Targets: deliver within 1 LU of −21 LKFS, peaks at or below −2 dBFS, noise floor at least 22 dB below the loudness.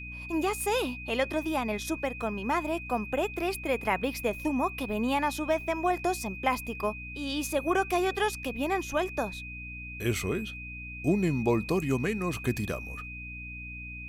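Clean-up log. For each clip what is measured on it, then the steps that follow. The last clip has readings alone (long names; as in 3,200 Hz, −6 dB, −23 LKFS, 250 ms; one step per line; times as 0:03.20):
mains hum 60 Hz; hum harmonics up to 300 Hz; level of the hum −41 dBFS; interfering tone 2,500 Hz; level of the tone −40 dBFS; integrated loudness −30.5 LKFS; sample peak −13.0 dBFS; target loudness −21.0 LKFS
→ hum removal 60 Hz, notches 5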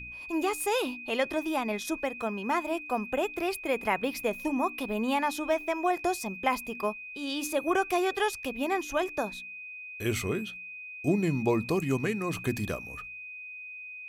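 mains hum none found; interfering tone 2,500 Hz; level of the tone −40 dBFS
→ notch filter 2,500 Hz, Q 30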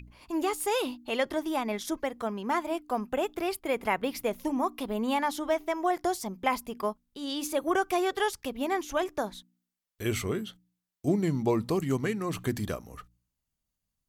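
interfering tone none found; integrated loudness −30.5 LKFS; sample peak −14.0 dBFS; target loudness −21.0 LKFS
→ level +9.5 dB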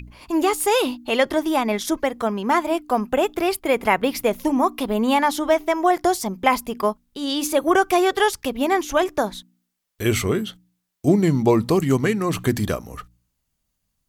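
integrated loudness −21.0 LKFS; sample peak −4.5 dBFS; background noise floor −76 dBFS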